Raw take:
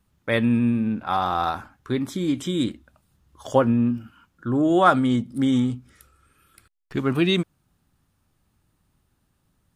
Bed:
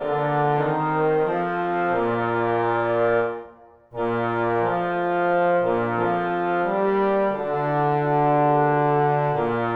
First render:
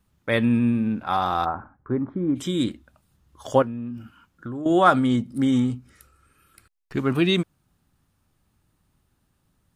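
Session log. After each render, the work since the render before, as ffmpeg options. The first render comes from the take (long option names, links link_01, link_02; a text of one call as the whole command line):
ffmpeg -i in.wav -filter_complex "[0:a]asplit=3[link_01][link_02][link_03];[link_01]afade=type=out:start_time=1.44:duration=0.02[link_04];[link_02]lowpass=frequency=1400:width=0.5412,lowpass=frequency=1400:width=1.3066,afade=type=in:start_time=1.44:duration=0.02,afade=type=out:start_time=2.35:duration=0.02[link_05];[link_03]afade=type=in:start_time=2.35:duration=0.02[link_06];[link_04][link_05][link_06]amix=inputs=3:normalize=0,asettb=1/sr,asplit=3[link_07][link_08][link_09];[link_07]atrim=end=3.624[link_10];[link_08]atrim=start=3.62:end=4.66,asetpts=PTS-STARTPTS,afade=type=in:duration=0.004:curve=qsin,afade=type=out:start_time=1.036:duration=0.004:curve=qsin,acompressor=threshold=-30dB:ratio=5:attack=3.2:release=140:knee=1:detection=peak[link_11];[link_09]atrim=start=4.656[link_12];[link_10][link_11]acrossfade=duration=0.004:curve1=hsin:curve2=qsin[link_13];[link_13][link_12]acrossfade=duration=0.004:curve1=qsin:curve2=hsin,asettb=1/sr,asplit=3[link_14][link_15][link_16];[link_14]atrim=end=5.174[link_17];[link_15]atrim=start=5.17:end=7.05,asetpts=PTS-STARTPTS,afade=type=in:duration=0.004:curve=qsin,afade=type=out:start_time=1.876:duration=0.004:curve=qsin,bandreject=frequency=3400:width=12[link_18];[link_16]atrim=start=7.046[link_19];[link_17][link_18]acrossfade=duration=0.004:curve1=hsin:curve2=qsin[link_20];[link_20][link_19]acrossfade=duration=0.004:curve1=qsin:curve2=hsin" out.wav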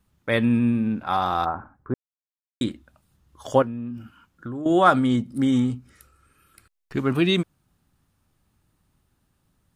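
ffmpeg -i in.wav -filter_complex "[0:a]asplit=3[link_01][link_02][link_03];[link_01]atrim=end=1.94,asetpts=PTS-STARTPTS,afade=type=out:start_time=1.936:duration=0.004:curve=hsin[link_04];[link_02]atrim=start=1.94:end=2.61,asetpts=PTS-STARTPTS,volume=0[link_05];[link_03]atrim=start=2.61,asetpts=PTS-STARTPTS,afade=type=in:duration=0.004:curve=hsin[link_06];[link_04][link_05][link_06]concat=n=3:v=0:a=1" out.wav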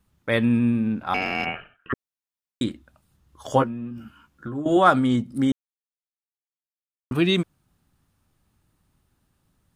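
ffmpeg -i in.wav -filter_complex "[0:a]asettb=1/sr,asplit=3[link_01][link_02][link_03];[link_01]atrim=end=1.144[link_04];[link_02]atrim=start=1.14:end=1.93,asetpts=PTS-STARTPTS,afade=type=in:duration=0.004:curve=qsin,afade=type=out:start_time=0.786:duration=0.004:curve=qsin,aeval=exprs='val(0)*sin(2*PI*1500*n/s)':channel_layout=same[link_05];[link_03]atrim=start=1.926[link_06];[link_04][link_05]acrossfade=duration=0.004:curve1=hsin:curve2=qsin[link_07];[link_07][link_06]acrossfade=duration=0.004:curve1=qsin:curve2=hsin,asettb=1/sr,asplit=3[link_08][link_09][link_10];[link_08]atrim=end=3.494[link_11];[link_09]atrim=start=3.49:end=4.77,asetpts=PTS-STARTPTS,afade=type=in:duration=0.004:curve=qsin,afade=type=out:start_time=1.276:duration=0.004:curve=qsin,asplit=2[link_12][link_13];[link_13]adelay=14,volume=-4dB[link_14];[link_12][link_14]amix=inputs=2:normalize=0,atrim=end_sample=56448[link_15];[link_10]atrim=start=4.766[link_16];[link_11][link_15]acrossfade=duration=0.004:curve1=hsin:curve2=qsin[link_17];[link_17][link_16]acrossfade=duration=0.004:curve1=qsin:curve2=hsin,asplit=3[link_18][link_19][link_20];[link_18]atrim=end=5.52,asetpts=PTS-STARTPTS,afade=type=out:start_time=5.516:duration=0.004:curve=hsin[link_21];[link_19]atrim=start=5.52:end=7.11,asetpts=PTS-STARTPTS,volume=0[link_22];[link_20]atrim=start=7.11,asetpts=PTS-STARTPTS,afade=type=in:duration=0.004:curve=hsin[link_23];[link_21][link_22][link_23]concat=n=3:v=0:a=1" out.wav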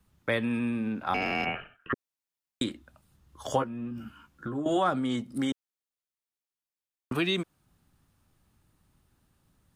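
ffmpeg -i in.wav -filter_complex "[0:a]acrossover=split=280|630[link_01][link_02][link_03];[link_01]acompressor=threshold=-37dB:ratio=4[link_04];[link_02]acompressor=threshold=-32dB:ratio=4[link_05];[link_03]acompressor=threshold=-28dB:ratio=4[link_06];[link_04][link_05][link_06]amix=inputs=3:normalize=0" out.wav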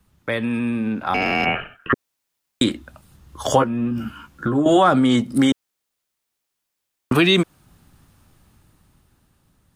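ffmpeg -i in.wav -filter_complex "[0:a]asplit=2[link_01][link_02];[link_02]alimiter=limit=-23dB:level=0:latency=1:release=26,volume=0.5dB[link_03];[link_01][link_03]amix=inputs=2:normalize=0,dynaudnorm=framelen=210:gausssize=13:maxgain=8.5dB" out.wav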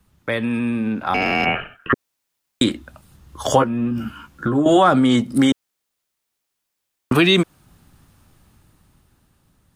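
ffmpeg -i in.wav -af "volume=1dB" out.wav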